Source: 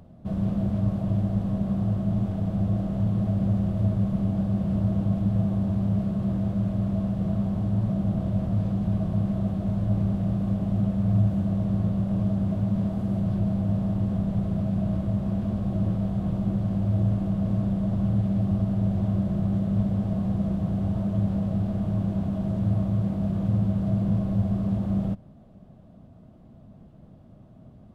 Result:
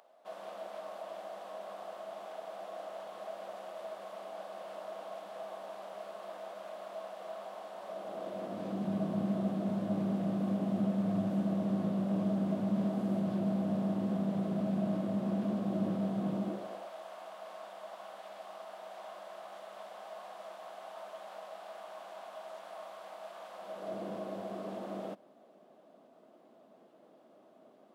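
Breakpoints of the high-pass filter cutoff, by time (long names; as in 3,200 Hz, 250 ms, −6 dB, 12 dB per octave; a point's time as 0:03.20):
high-pass filter 24 dB per octave
0:07.77 600 Hz
0:08.94 220 Hz
0:16.38 220 Hz
0:16.94 720 Hz
0:23.54 720 Hz
0:23.97 350 Hz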